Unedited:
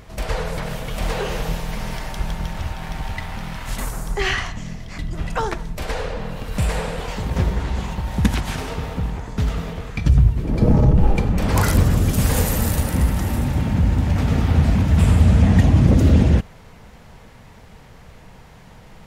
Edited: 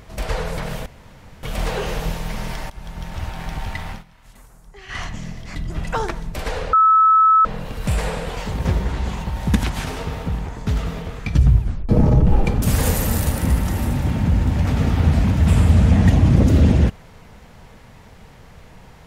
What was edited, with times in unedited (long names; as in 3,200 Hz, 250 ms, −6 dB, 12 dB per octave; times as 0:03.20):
0:00.86: splice in room tone 0.57 s
0:02.13–0:02.74: fade in, from −17 dB
0:03.33–0:04.45: duck −20.5 dB, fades 0.14 s
0:06.16: insert tone 1,300 Hz −9.5 dBFS 0.72 s
0:10.31: tape stop 0.29 s
0:11.33–0:12.13: remove